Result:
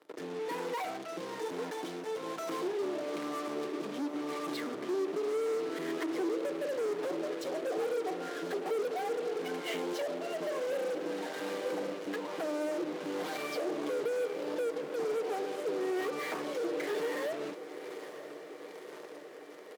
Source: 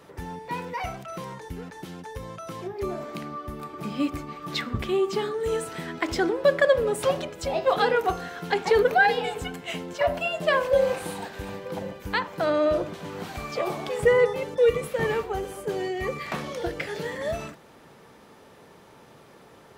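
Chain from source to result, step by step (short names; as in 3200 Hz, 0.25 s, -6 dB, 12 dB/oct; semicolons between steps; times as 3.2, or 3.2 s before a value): notch 2600 Hz, Q 10; treble ducked by the level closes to 520 Hz, closed at -22 dBFS; comb 6.5 ms, depth 47%; compressor, threshold -29 dBFS, peak gain reduction 14 dB; rotary speaker horn 1.1 Hz; in parallel at -8.5 dB: fuzz box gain 47 dB, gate -47 dBFS; on the sum: ladder high-pass 270 Hz, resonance 40%; on a send: diffused feedback echo 0.982 s, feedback 69%, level -12.5 dB; on the sum: gain -7 dB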